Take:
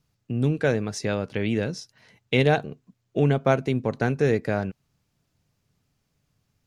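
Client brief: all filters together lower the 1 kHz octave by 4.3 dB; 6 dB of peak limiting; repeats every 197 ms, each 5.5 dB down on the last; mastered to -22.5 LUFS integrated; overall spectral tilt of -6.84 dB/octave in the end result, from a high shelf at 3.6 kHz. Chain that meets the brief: peaking EQ 1 kHz -6.5 dB; treble shelf 3.6 kHz -4.5 dB; peak limiter -14.5 dBFS; feedback delay 197 ms, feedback 53%, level -5.5 dB; trim +4 dB

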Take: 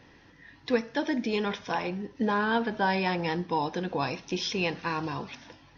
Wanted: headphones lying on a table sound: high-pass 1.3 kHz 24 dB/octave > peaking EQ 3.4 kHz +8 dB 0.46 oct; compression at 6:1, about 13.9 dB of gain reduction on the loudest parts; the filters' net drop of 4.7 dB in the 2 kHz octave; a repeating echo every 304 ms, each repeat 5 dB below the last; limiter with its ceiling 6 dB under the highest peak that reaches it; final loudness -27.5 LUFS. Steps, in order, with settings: peaking EQ 2 kHz -7 dB; compression 6:1, threshold -35 dBFS; peak limiter -30 dBFS; high-pass 1.3 kHz 24 dB/octave; peaking EQ 3.4 kHz +8 dB 0.46 oct; feedback delay 304 ms, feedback 56%, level -5 dB; trim +16 dB

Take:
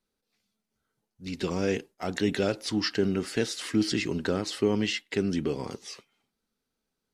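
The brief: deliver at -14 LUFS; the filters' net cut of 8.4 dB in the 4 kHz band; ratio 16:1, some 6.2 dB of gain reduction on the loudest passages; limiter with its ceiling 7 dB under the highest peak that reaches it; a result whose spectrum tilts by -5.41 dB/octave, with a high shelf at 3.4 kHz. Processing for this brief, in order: treble shelf 3.4 kHz -3.5 dB; peaking EQ 4 kHz -9 dB; compression 16:1, threshold -26 dBFS; trim +21.5 dB; peak limiter -1.5 dBFS

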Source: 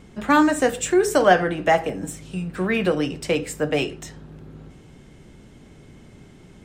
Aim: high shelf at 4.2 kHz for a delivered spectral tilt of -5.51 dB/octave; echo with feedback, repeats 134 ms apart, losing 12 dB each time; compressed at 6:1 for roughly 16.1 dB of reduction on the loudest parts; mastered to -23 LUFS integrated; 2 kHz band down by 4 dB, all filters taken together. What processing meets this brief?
peaking EQ 2 kHz -4 dB; treble shelf 4.2 kHz -7.5 dB; compression 6:1, threshold -29 dBFS; feedback delay 134 ms, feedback 25%, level -12 dB; trim +10.5 dB

